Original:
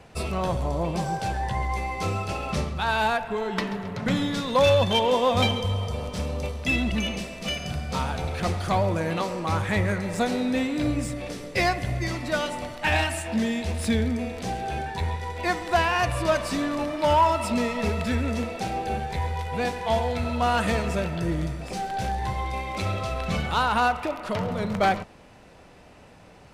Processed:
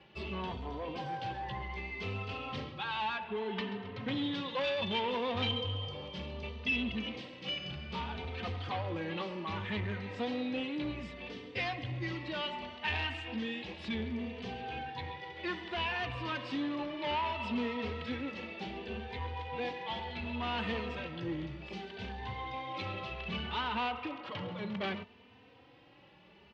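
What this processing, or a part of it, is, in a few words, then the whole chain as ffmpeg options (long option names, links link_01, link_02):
barber-pole flanger into a guitar amplifier: -filter_complex "[0:a]asplit=2[link_01][link_02];[link_02]adelay=3.1,afreqshift=0.65[link_03];[link_01][link_03]amix=inputs=2:normalize=1,asoftclip=type=tanh:threshold=-23.5dB,highpass=100,equalizer=frequency=160:width_type=q:width=4:gain=-7,equalizer=frequency=650:width_type=q:width=4:gain=-9,equalizer=frequency=1400:width_type=q:width=4:gain=-5,equalizer=frequency=3000:width_type=q:width=4:gain=7,lowpass=frequency=4100:width=0.5412,lowpass=frequency=4100:width=1.3066,volume=-4dB"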